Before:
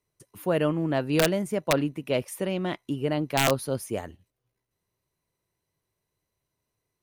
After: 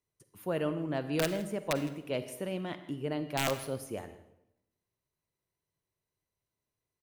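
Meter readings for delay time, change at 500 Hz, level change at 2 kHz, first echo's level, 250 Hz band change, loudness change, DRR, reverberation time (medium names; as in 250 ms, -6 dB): 161 ms, -7.5 dB, -7.5 dB, -19.5 dB, -7.5 dB, -7.5 dB, 10.5 dB, 0.80 s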